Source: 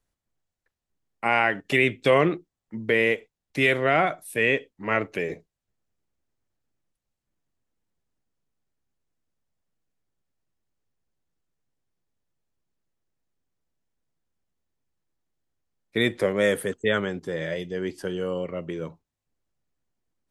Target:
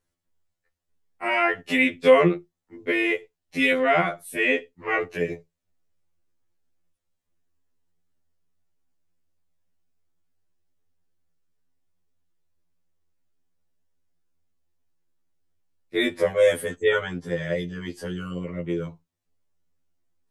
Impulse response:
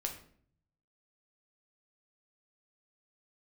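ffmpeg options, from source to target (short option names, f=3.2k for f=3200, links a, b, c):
-filter_complex "[0:a]asplit=2[a][b];[1:a]atrim=start_sample=2205,afade=t=out:st=0.38:d=0.01,atrim=end_sample=17199,atrim=end_sample=3969[c];[b][c]afir=irnorm=-1:irlink=0,volume=-19.5dB[d];[a][d]amix=inputs=2:normalize=0,afftfilt=real='re*2*eq(mod(b,4),0)':imag='im*2*eq(mod(b,4),0)':win_size=2048:overlap=0.75,volume=2dB"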